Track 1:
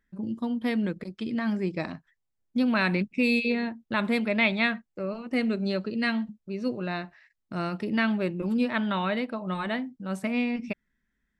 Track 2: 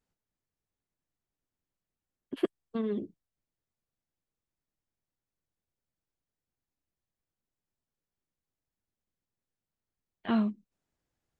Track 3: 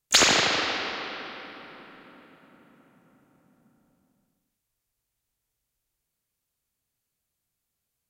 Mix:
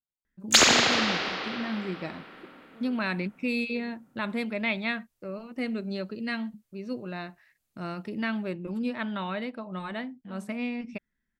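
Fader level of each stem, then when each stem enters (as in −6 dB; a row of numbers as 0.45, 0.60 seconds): −5.0, −20.0, +0.5 decibels; 0.25, 0.00, 0.40 seconds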